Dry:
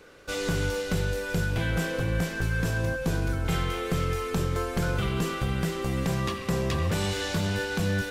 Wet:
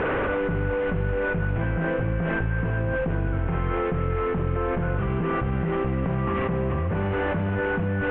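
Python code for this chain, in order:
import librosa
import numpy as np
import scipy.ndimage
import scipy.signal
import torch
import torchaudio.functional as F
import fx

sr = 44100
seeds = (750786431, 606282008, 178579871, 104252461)

y = fx.delta_mod(x, sr, bps=16000, step_db=-33.5)
y = scipy.signal.sosfilt(scipy.signal.butter(2, 1600.0, 'lowpass', fs=sr, output='sos'), y)
y = fx.env_flatten(y, sr, amount_pct=100)
y = y * librosa.db_to_amplitude(-1.5)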